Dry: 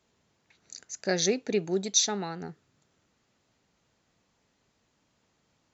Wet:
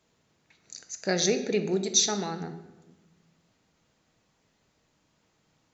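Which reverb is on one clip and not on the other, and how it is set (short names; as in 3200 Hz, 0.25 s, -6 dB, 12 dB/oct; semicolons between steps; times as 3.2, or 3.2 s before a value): shoebox room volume 580 m³, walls mixed, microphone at 0.59 m; gain +1 dB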